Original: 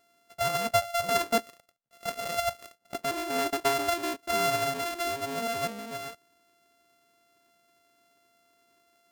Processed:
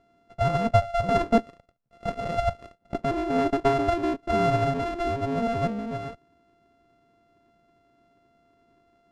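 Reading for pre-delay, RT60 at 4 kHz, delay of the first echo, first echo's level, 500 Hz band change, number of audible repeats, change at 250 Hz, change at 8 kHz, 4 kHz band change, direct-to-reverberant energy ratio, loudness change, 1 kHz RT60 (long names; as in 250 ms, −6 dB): no reverb audible, no reverb audible, no echo audible, no echo audible, +5.0 dB, no echo audible, +10.0 dB, below −10 dB, −6.5 dB, no reverb audible, +3.5 dB, no reverb audible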